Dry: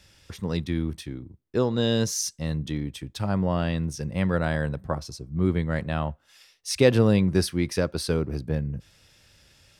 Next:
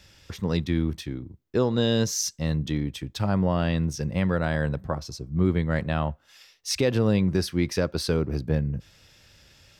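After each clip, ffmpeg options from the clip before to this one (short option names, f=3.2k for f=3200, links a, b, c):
-af "equalizer=f=9.4k:t=o:w=0.24:g=-11.5,alimiter=limit=-14dB:level=0:latency=1:release=279,volume=2.5dB"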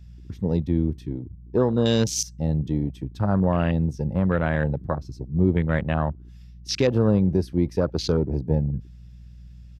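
-af "aeval=exprs='val(0)+0.00631*(sin(2*PI*60*n/s)+sin(2*PI*2*60*n/s)/2+sin(2*PI*3*60*n/s)/3+sin(2*PI*4*60*n/s)/4+sin(2*PI*5*60*n/s)/5)':c=same,afwtdn=0.0224,aresample=32000,aresample=44100,volume=2.5dB"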